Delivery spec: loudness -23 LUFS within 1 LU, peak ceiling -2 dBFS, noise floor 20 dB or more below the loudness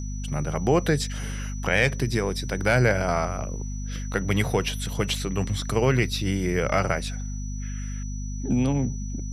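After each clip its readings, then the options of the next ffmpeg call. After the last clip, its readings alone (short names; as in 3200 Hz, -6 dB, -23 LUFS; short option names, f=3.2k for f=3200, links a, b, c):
hum 50 Hz; harmonics up to 250 Hz; hum level -29 dBFS; steady tone 5900 Hz; tone level -43 dBFS; loudness -26.0 LUFS; peak -7.0 dBFS; loudness target -23.0 LUFS
-> -af "bandreject=f=50:t=h:w=6,bandreject=f=100:t=h:w=6,bandreject=f=150:t=h:w=6,bandreject=f=200:t=h:w=6,bandreject=f=250:t=h:w=6"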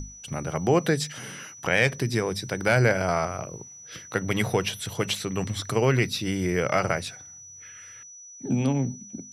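hum none; steady tone 5900 Hz; tone level -43 dBFS
-> -af "bandreject=f=5.9k:w=30"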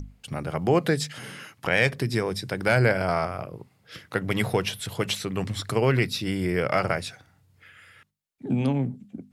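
steady tone none; loudness -26.0 LUFS; peak -7.5 dBFS; loudness target -23.0 LUFS
-> -af "volume=3dB"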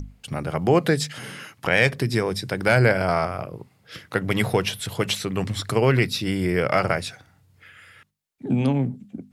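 loudness -23.0 LUFS; peak -4.5 dBFS; noise floor -60 dBFS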